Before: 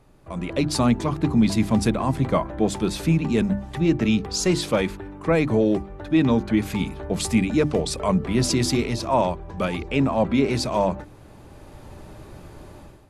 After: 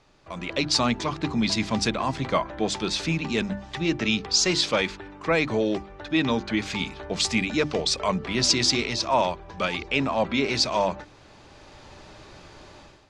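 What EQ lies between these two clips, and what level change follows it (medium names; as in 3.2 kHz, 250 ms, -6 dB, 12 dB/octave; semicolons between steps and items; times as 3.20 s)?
low-pass 5.8 kHz 24 dB/octave; tilt EQ +3.5 dB/octave; bass shelf 60 Hz +11.5 dB; 0.0 dB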